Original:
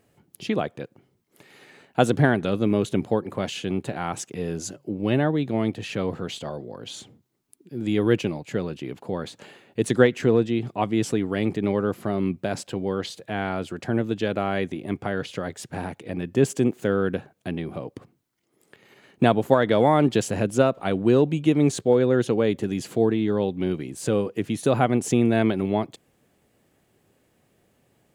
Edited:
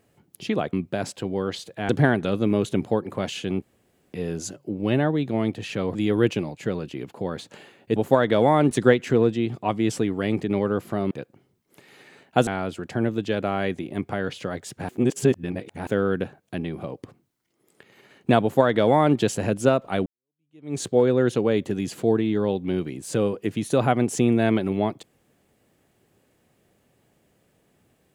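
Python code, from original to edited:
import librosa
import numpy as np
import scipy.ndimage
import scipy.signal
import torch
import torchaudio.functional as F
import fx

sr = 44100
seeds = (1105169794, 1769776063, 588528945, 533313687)

y = fx.edit(x, sr, fx.swap(start_s=0.73, length_s=1.36, other_s=12.24, other_length_s=1.16),
    fx.room_tone_fill(start_s=3.82, length_s=0.51),
    fx.cut(start_s=6.15, length_s=1.68),
    fx.reverse_span(start_s=15.82, length_s=0.98),
    fx.duplicate(start_s=19.35, length_s=0.75, to_s=9.84),
    fx.fade_in_span(start_s=20.99, length_s=0.74, curve='exp'), tone=tone)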